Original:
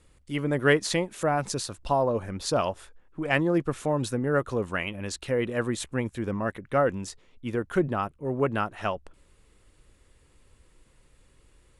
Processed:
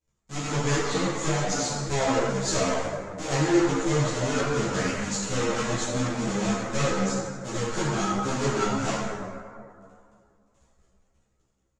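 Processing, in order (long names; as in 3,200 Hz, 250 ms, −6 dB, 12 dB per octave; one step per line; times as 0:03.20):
each half-wave held at its own peak
noise gate −50 dBFS, range −21 dB
low-shelf EQ 83 Hz −9.5 dB
treble cut that deepens with the level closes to 2,500 Hz, closed at −17 dBFS
tube saturation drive 23 dB, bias 0.65
low-pass with resonance 7,000 Hz, resonance Q 5.6
double-tracking delay 15 ms −4 dB
dense smooth reverb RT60 2.3 s, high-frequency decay 0.4×, DRR −6.5 dB
string-ensemble chorus
level −3 dB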